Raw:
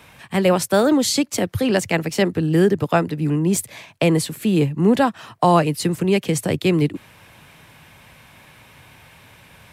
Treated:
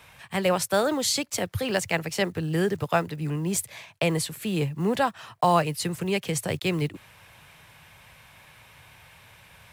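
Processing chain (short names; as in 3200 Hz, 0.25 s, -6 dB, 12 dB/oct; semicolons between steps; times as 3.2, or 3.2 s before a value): block floating point 7-bit; bell 270 Hz -9.5 dB 1.3 oct; gain -3.5 dB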